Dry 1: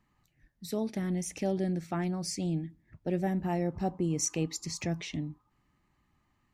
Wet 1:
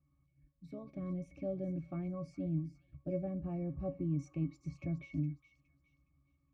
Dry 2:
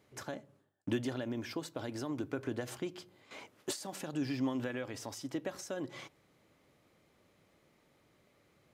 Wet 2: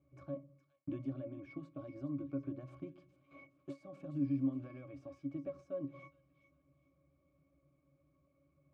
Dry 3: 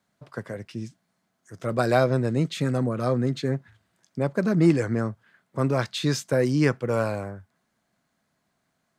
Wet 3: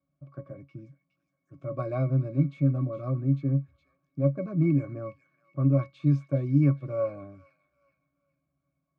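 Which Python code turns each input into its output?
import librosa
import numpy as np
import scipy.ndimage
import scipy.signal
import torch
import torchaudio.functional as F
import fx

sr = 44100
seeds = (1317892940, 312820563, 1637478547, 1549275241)

p1 = fx.low_shelf(x, sr, hz=360.0, db=3.0)
p2 = fx.octave_resonator(p1, sr, note='C#', decay_s=0.14)
p3 = p2 + fx.echo_wet_highpass(p2, sr, ms=415, feedback_pct=33, hz=2300.0, wet_db=-10.5, dry=0)
y = F.gain(torch.from_numpy(p3), 3.0).numpy()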